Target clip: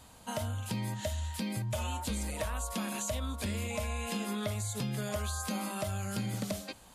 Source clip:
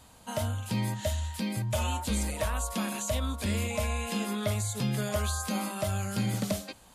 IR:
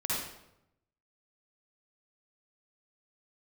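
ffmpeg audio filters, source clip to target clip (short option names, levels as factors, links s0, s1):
-af "acompressor=threshold=0.0251:ratio=4"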